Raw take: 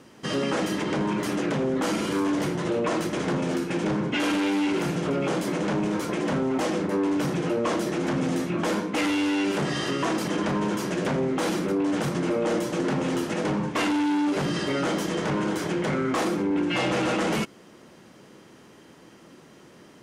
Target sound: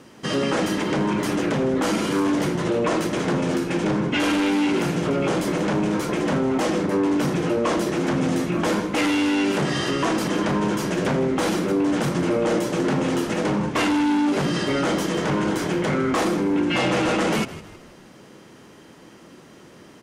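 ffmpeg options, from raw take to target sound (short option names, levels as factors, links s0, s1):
-filter_complex "[0:a]asplit=5[s0][s1][s2][s3][s4];[s1]adelay=159,afreqshift=-55,volume=0.168[s5];[s2]adelay=318,afreqshift=-110,volume=0.0668[s6];[s3]adelay=477,afreqshift=-165,volume=0.0269[s7];[s4]adelay=636,afreqshift=-220,volume=0.0107[s8];[s0][s5][s6][s7][s8]amix=inputs=5:normalize=0,volume=1.5"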